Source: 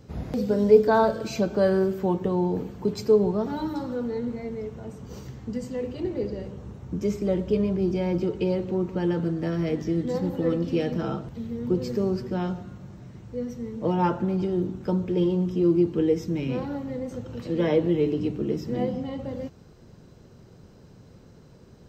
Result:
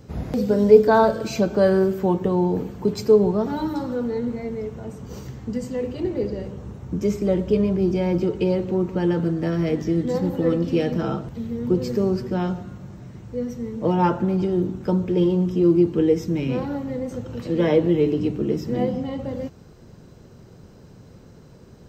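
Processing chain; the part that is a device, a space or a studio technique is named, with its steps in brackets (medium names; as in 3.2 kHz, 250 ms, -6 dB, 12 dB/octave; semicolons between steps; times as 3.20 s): exciter from parts (in parallel at -11.5 dB: high-pass 2.1 kHz 12 dB/octave + saturation -40 dBFS, distortion -9 dB + high-pass 4.6 kHz 12 dB/octave); on the sum: trim +4 dB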